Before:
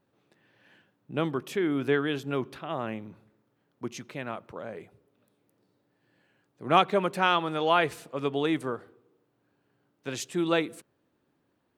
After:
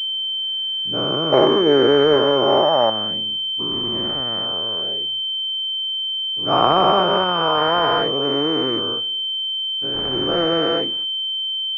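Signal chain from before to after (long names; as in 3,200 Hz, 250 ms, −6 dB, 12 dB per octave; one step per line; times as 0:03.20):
every bin's largest magnitude spread in time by 480 ms
0:01.32–0:02.90: hollow resonant body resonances 590/830 Hz, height 16 dB, ringing for 20 ms
switching amplifier with a slow clock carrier 3,100 Hz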